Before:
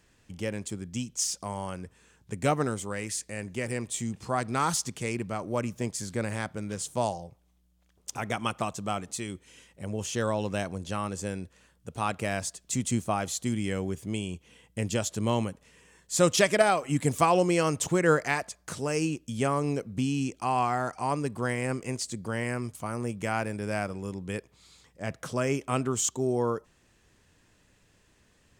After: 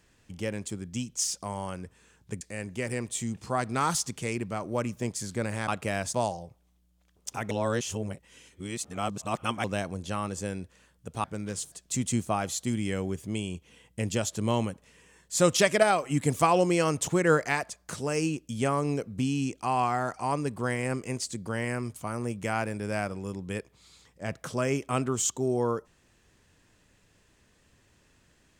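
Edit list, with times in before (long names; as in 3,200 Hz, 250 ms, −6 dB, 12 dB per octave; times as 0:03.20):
0:02.41–0:03.20: remove
0:06.47–0:06.95: swap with 0:12.05–0:12.51
0:08.32–0:10.45: reverse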